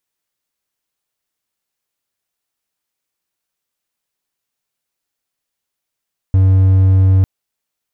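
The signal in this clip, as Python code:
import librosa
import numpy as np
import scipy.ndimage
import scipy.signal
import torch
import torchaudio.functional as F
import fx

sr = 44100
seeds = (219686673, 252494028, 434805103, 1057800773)

y = 10.0 ** (-5.0 / 20.0) * (1.0 - 4.0 * np.abs(np.mod(94.9 * (np.arange(round(0.9 * sr)) / sr) + 0.25, 1.0) - 0.5))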